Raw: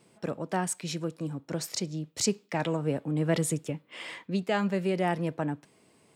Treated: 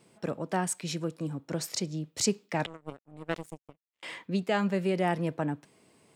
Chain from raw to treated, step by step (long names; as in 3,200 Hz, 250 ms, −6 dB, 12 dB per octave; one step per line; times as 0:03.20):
0:02.66–0:04.03: power curve on the samples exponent 3